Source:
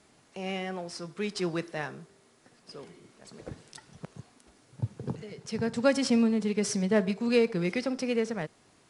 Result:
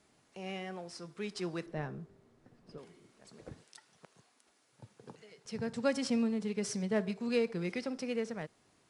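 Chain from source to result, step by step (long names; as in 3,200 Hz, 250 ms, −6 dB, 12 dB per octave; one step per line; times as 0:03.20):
0:01.66–0:02.78: spectral tilt −3.5 dB per octave
0:03.64–0:05.46: high-pass filter 750 Hz 6 dB per octave
level −7 dB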